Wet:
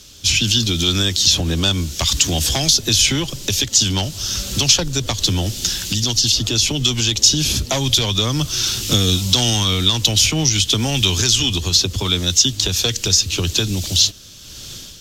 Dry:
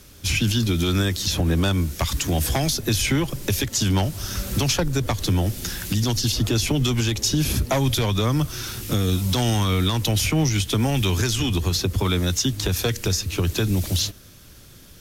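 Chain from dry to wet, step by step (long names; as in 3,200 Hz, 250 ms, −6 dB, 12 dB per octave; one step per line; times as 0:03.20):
flat-topped bell 4,600 Hz +11.5 dB
automatic gain control
level −1 dB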